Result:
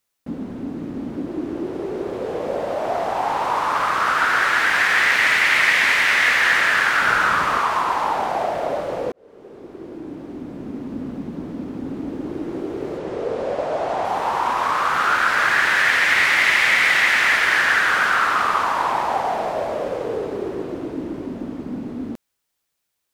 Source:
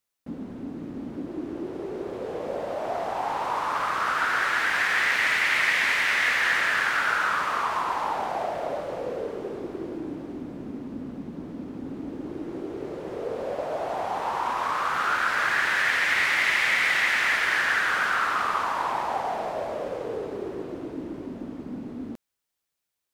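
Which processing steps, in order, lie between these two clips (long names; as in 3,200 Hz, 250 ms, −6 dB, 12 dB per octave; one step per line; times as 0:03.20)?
0:07.02–0:07.59: low-shelf EQ 220 Hz +10 dB
0:09.12–0:11.03: fade in
0:12.98–0:14.05: low-pass filter 8,500 Hz 12 dB per octave
level +6.5 dB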